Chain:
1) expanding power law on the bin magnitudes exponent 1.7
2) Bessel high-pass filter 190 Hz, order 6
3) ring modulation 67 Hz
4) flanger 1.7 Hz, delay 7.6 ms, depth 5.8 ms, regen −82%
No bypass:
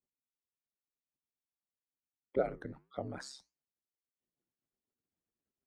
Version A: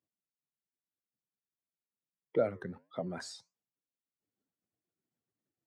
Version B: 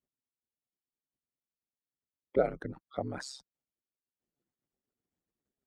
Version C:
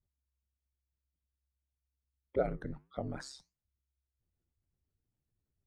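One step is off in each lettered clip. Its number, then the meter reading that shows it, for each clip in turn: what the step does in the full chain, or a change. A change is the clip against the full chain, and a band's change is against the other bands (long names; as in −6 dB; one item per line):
3, 1 kHz band −3.5 dB
4, change in integrated loudness +4.5 LU
2, 125 Hz band +5.0 dB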